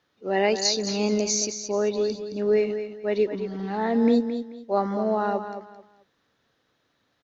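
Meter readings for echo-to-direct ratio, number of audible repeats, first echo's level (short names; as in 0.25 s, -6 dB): -9.0 dB, 3, -9.5 dB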